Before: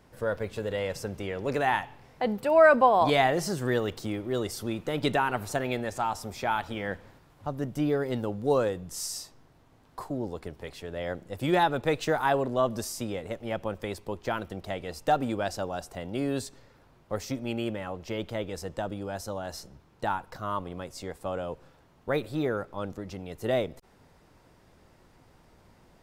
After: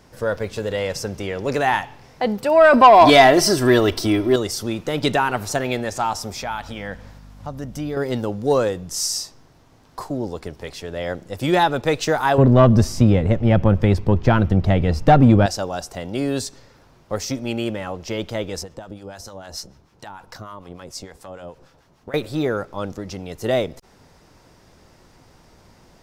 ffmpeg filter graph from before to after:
-filter_complex "[0:a]asettb=1/sr,asplit=3[a][b][c];[a]atrim=end=2.734[d];[b]atrim=start=2.73:end=4.36,asetpts=PTS-STARTPTS,afade=t=in:d=0.004:c=qsin,afade=t=out:st=1.626:d=0.004:c=qsin,equalizer=f=6.9k:w=5.8:g=-10.5,aecho=1:1:3:0.57,atrim=end_sample=71883,acontrast=40[e];[c]atrim=start=4.356[f];[d][e]acrossfade=d=0.004:c1=hsin:c2=qsin[g];[g][f]acrossfade=d=0.004:c1=qsin:c2=hsin,asettb=1/sr,asplit=3[h][i][j];[h]atrim=end=6.414[k];[i]atrim=start=6.41:end=7.97,asetpts=PTS-STARTPTS,afade=t=in:d=0.004:c=qsin,afade=t=out:st=1.556:d=0.004:c=qsin,equalizer=f=370:w=6.3:g=-12,acompressor=threshold=-41dB:ratio=1.5:attack=3.2:release=140:knee=1:detection=peak,aeval=exprs='val(0)+0.00398*(sin(2*PI*50*n/s)+sin(2*PI*2*50*n/s)/2+sin(2*PI*3*50*n/s)/3+sin(2*PI*4*50*n/s)/4+sin(2*PI*5*50*n/s)/5)':c=same[l];[j]atrim=start=7.966[m];[k][l]acrossfade=d=0.004:c1=hsin:c2=qsin[n];[n][m]acrossfade=d=0.004:c1=qsin:c2=hsin,asettb=1/sr,asplit=3[o][p][q];[o]atrim=end=12.384[r];[p]atrim=start=12.38:end=15.46,asetpts=PTS-STARTPTS,afade=t=in:d=0.004:c=qsin,afade=t=out:st=3.076:d=0.004:c=qsin,bass=f=250:g=15,treble=f=4k:g=-14,acontrast=24[s];[q]atrim=start=15.456[t];[r][s]acrossfade=d=0.004:c1=hsin:c2=qsin[u];[u][t]acrossfade=d=0.004:c1=qsin:c2=hsin,asettb=1/sr,asplit=3[v][w][x];[v]atrim=end=18.634[y];[w]atrim=start=18.63:end=22.14,asetpts=PTS-STARTPTS,afade=t=in:d=0.004:c=qsin,afade=t=out:st=3.506:d=0.004:c=qsin,acompressor=threshold=-35dB:ratio=10:attack=3.2:release=140:knee=1:detection=peak,acrossover=split=880[z][aa];[z]aeval=exprs='val(0)*(1-0.7/2+0.7/2*cos(2*PI*6.7*n/s))':c=same[ab];[aa]aeval=exprs='val(0)*(1-0.7/2-0.7/2*cos(2*PI*6.7*n/s))':c=same[ac];[ab][ac]amix=inputs=2:normalize=0[ad];[x]atrim=start=22.136[ae];[y][ad]acrossfade=d=0.004:c1=hsin:c2=qsin[af];[af][ae]acrossfade=d=0.004:c1=qsin:c2=hsin,equalizer=f=5.6k:w=1.6:g=7,acontrast=74"

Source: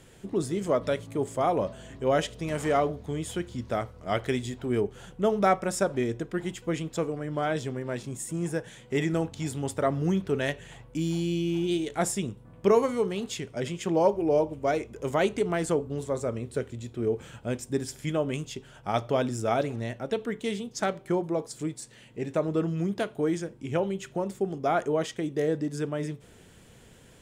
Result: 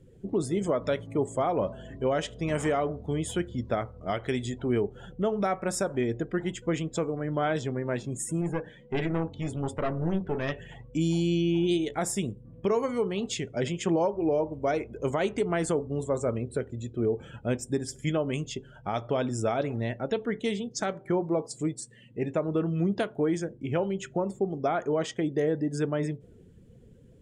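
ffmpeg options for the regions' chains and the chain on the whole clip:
-filter_complex "[0:a]asettb=1/sr,asplit=3[a][b][c];[a]atrim=end=8.414[d];[b]atrim=start=8.41:end=10.52,asetpts=PTS-STARTPTS,afade=t=in:d=0.004:c=qsin,afade=t=out:st=2.106:d=0.004:c=qsin,aemphasis=mode=reproduction:type=50kf,bandreject=f=60:t=h:w=6,bandreject=f=120:t=h:w=6,bandreject=f=180:t=h:w=6,bandreject=f=240:t=h:w=6,bandreject=f=300:t=h:w=6,bandreject=f=360:t=h:w=6,bandreject=f=420:t=h:w=6,bandreject=f=480:t=h:w=6,bandreject=f=540:t=h:w=6,aeval=exprs='clip(val(0),-1,0.0224)':c=same[e];[c]atrim=start=10.516[f];[d][e]acrossfade=d=0.004:c1=hsin:c2=qsin[g];[g][f]acrossfade=d=0.004:c1=qsin:c2=hsin,afftdn=nr=21:nf=-49,alimiter=limit=-20dB:level=0:latency=1:release=246,volume=2.5dB"

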